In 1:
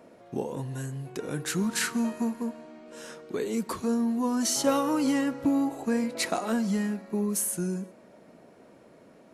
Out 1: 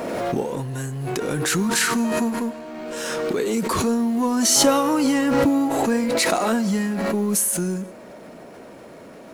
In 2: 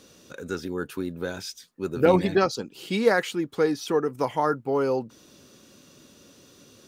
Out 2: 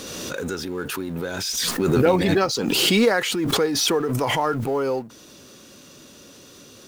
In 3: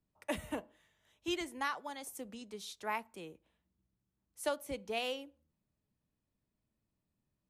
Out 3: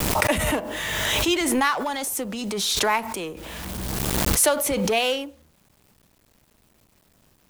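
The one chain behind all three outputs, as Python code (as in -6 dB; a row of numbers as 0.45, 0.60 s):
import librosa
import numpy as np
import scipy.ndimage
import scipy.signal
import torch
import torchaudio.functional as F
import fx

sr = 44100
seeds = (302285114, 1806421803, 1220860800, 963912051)

y = fx.law_mismatch(x, sr, coded='mu')
y = fx.peak_eq(y, sr, hz=150.0, db=-3.0, octaves=2.8)
y = fx.pre_swell(y, sr, db_per_s=20.0)
y = librosa.util.normalize(y) * 10.0 ** (-6 / 20.0)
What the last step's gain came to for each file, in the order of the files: +6.5, +1.0, +13.0 dB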